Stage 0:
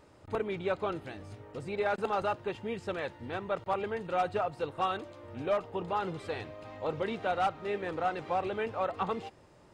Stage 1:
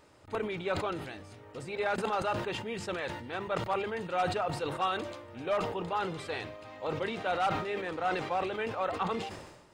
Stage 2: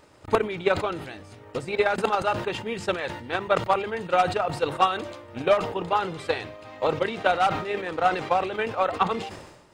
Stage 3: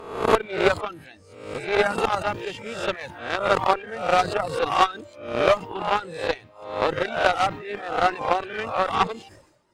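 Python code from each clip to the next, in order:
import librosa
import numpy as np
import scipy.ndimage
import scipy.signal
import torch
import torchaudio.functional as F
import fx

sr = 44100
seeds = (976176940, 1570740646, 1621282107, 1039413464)

y1 = fx.tilt_shelf(x, sr, db=-3.0, hz=1100.0)
y1 = fx.hum_notches(y1, sr, base_hz=50, count=4)
y1 = fx.sustainer(y1, sr, db_per_s=53.0)
y2 = fx.transient(y1, sr, attack_db=11, sustain_db=-2)
y2 = y2 * 10.0 ** (4.5 / 20.0)
y3 = fx.spec_swells(y2, sr, rise_s=0.91)
y3 = fx.cheby_harmonics(y3, sr, harmonics=(3, 4, 7), levels_db=(-17, -25, -30), full_scale_db=-5.0)
y3 = fx.dereverb_blind(y3, sr, rt60_s=0.68)
y3 = y3 * 10.0 ** (3.5 / 20.0)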